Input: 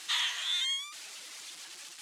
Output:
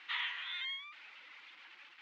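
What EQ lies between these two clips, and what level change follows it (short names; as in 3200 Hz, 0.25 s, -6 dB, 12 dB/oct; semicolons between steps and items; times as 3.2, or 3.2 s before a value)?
speaker cabinet 160–2000 Hz, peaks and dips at 160 Hz -9 dB, 390 Hz -8 dB, 670 Hz -9 dB, 1200 Hz -4 dB, 1700 Hz -6 dB; tilt shelf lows -9.5 dB, about 1300 Hz; +1.0 dB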